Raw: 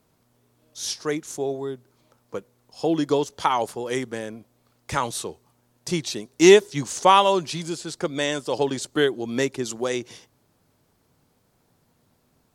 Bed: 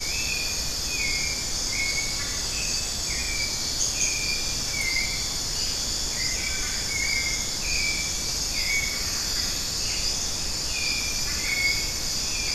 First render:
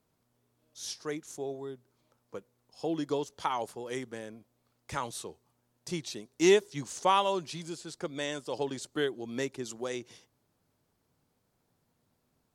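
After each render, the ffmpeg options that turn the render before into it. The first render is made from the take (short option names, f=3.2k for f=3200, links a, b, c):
-af "volume=-10dB"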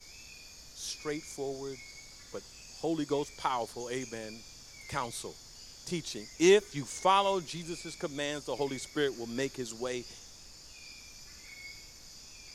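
-filter_complex "[1:a]volume=-23.5dB[a];[0:a][a]amix=inputs=2:normalize=0"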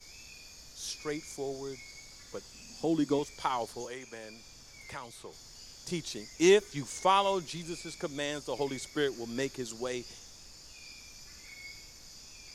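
-filter_complex "[0:a]asettb=1/sr,asplit=3[a][b][c];[a]atrim=end=2.544[d];[b]atrim=start=2.54:end=3.19,asetpts=PTS-STARTPTS,afade=t=in:d=0.004:c=qsin,afade=t=out:st=0.646:d=0.004:c=qsin,equalizer=f=230:w=2.6:g=13.5[e];[c]atrim=start=3.186[f];[d][e]acrossfade=d=0.004:c1=hsin:c2=qsin[g];[g][f]acrossfade=d=0.004:c1=qsin:c2=hsin,asettb=1/sr,asplit=3[h][i][j];[h]atrim=end=3.854[k];[i]atrim=start=3.85:end=5.33,asetpts=PTS-STARTPTS,afade=t=in:d=0.004:c=qsin,afade=t=out:st=1.476:d=0.004:c=qsin,acrossover=split=500|2700[l][m][n];[l]acompressor=threshold=-50dB:ratio=4[o];[m]acompressor=threshold=-42dB:ratio=4[p];[n]acompressor=threshold=-52dB:ratio=4[q];[o][p][q]amix=inputs=3:normalize=0[r];[j]atrim=start=5.326[s];[k][r]acrossfade=d=0.004:c1=hsin:c2=qsin[t];[t][s]acrossfade=d=0.004:c1=qsin:c2=hsin"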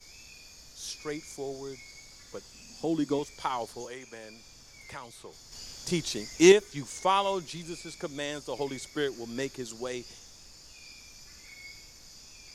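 -filter_complex "[0:a]asplit=3[a][b][c];[a]atrim=end=5.522[d];[b]atrim=start=5.518:end=6.522,asetpts=PTS-STARTPTS,volume=6dB[e];[c]atrim=start=6.518[f];[d][e]acrossfade=d=0.004:c1=hsin:c2=hsin[g];[g][f]acrossfade=d=0.004:c1=hsin:c2=hsin"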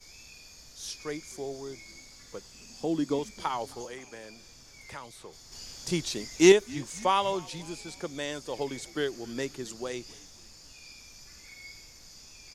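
-filter_complex "[0:a]asplit=4[a][b][c][d];[b]adelay=265,afreqshift=-77,volume=-23dB[e];[c]adelay=530,afreqshift=-154,volume=-28.8dB[f];[d]adelay=795,afreqshift=-231,volume=-34.7dB[g];[a][e][f][g]amix=inputs=4:normalize=0"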